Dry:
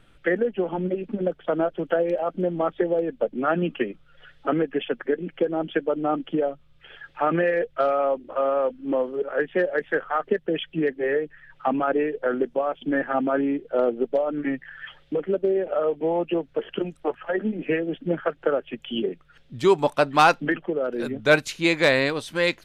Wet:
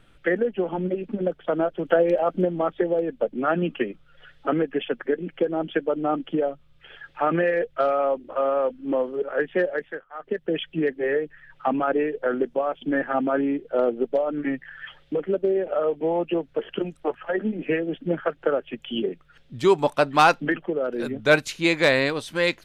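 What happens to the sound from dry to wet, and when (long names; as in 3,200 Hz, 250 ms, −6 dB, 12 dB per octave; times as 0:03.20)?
0:01.85–0:02.45: clip gain +3.5 dB
0:09.65–0:10.50: duck −23.5 dB, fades 0.41 s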